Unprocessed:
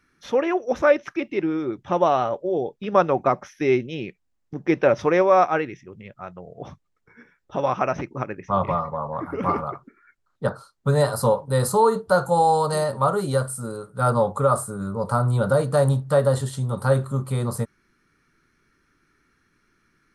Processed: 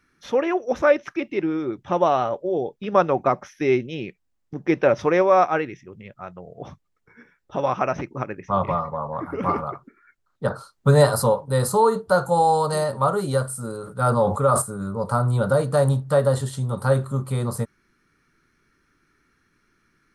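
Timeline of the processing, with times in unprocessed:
0:10.50–0:11.23: clip gain +4.5 dB
0:13.65–0:14.62: level that may fall only so fast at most 71 dB per second

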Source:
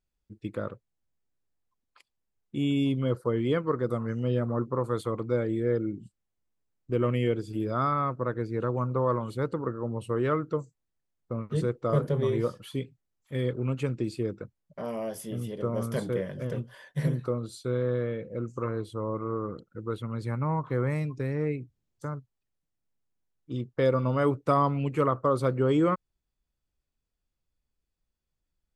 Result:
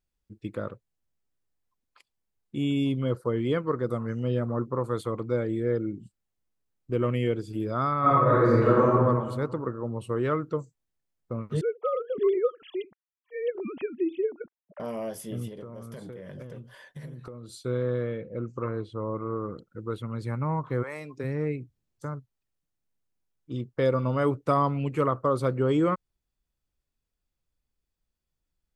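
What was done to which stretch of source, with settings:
0:08.00–0:08.86: thrown reverb, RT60 1.5 s, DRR −10.5 dB
0:11.61–0:14.80: three sine waves on the formant tracks
0:15.48–0:17.59: downward compressor 10 to 1, threshold −37 dBFS
0:18.18–0:19.42: low-pass filter 4,000 Hz
0:20.82–0:21.23: high-pass filter 760 Hz → 190 Hz

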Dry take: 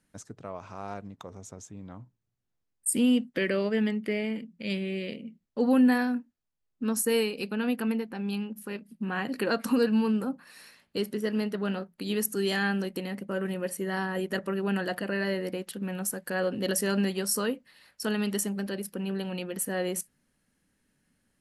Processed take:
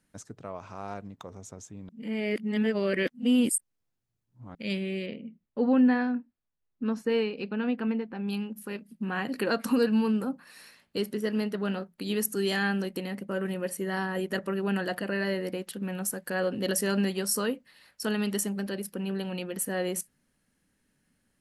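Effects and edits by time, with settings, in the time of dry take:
0:01.89–0:04.55: reverse
0:05.06–0:08.28: high-frequency loss of the air 240 metres

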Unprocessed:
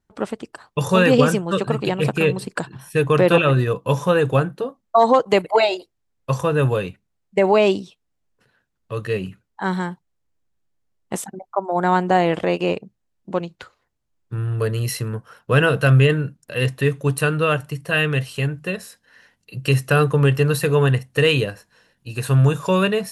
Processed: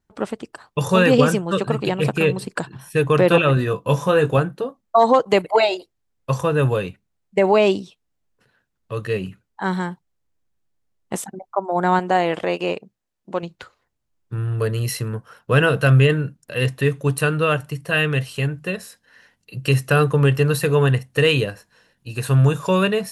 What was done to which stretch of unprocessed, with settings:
0:03.55–0:04.38: double-tracking delay 20 ms −8 dB
0:11.99–0:13.43: low-shelf EQ 230 Hz −9.5 dB

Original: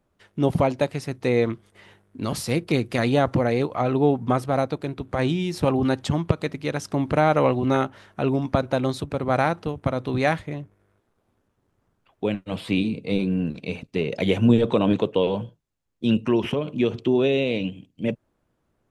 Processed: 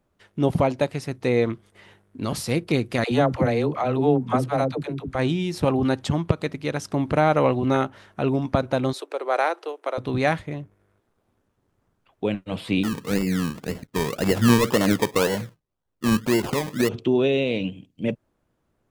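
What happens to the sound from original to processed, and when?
0:03.04–0:05.15: all-pass dispersion lows, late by 77 ms, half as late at 400 Hz
0:08.93–0:09.98: Butterworth high-pass 350 Hz 48 dB per octave
0:12.83–0:16.89: sample-and-hold swept by an LFO 25×, swing 60% 1.9 Hz

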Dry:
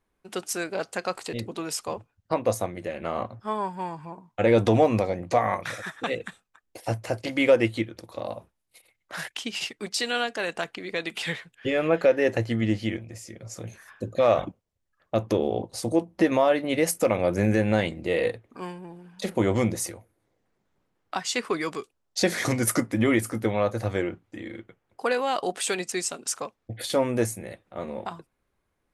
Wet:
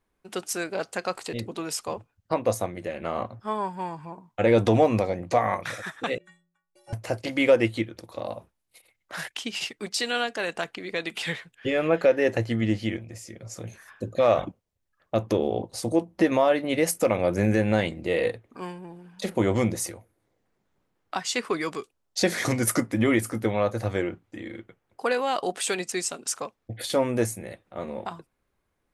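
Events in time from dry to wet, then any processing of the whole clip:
0:06.18–0:06.93: stiff-string resonator 170 Hz, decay 0.61 s, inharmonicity 0.03

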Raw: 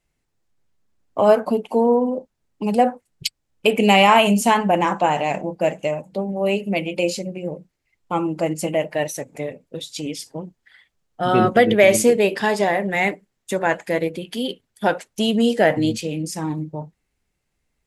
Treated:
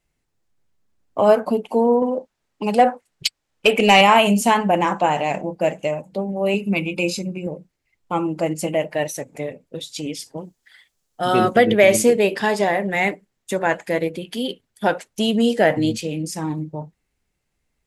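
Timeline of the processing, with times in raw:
0:02.02–0:04.01: mid-hump overdrive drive 11 dB, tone 5,500 Hz, clips at −2 dBFS
0:06.54–0:07.47: comb filter 0.8 ms, depth 62%
0:10.37–0:11.56: bass and treble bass −4 dB, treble +10 dB

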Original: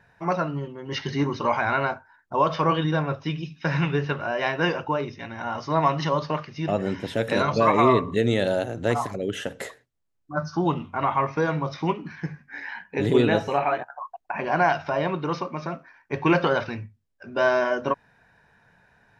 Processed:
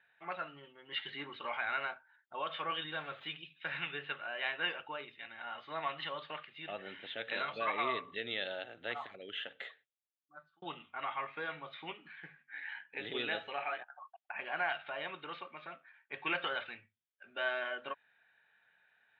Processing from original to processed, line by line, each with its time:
0:02.91–0:03.37: converter with a step at zero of −37.5 dBFS
0:09.64–0:10.62: fade out
whole clip: elliptic low-pass filter 3,500 Hz, stop band 40 dB; first difference; notch filter 1,000 Hz, Q 5.9; level +4 dB

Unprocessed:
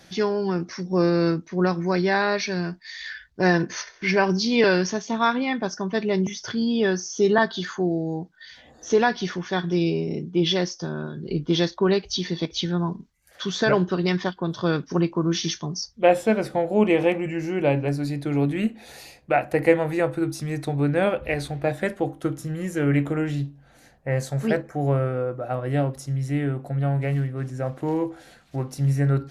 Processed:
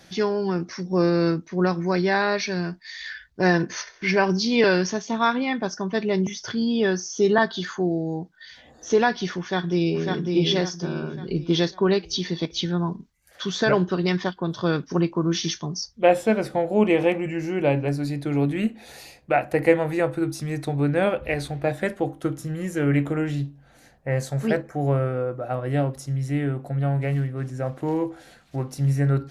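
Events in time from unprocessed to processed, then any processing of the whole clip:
0:09.39–0:10.06: delay throw 550 ms, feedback 40%, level −3.5 dB

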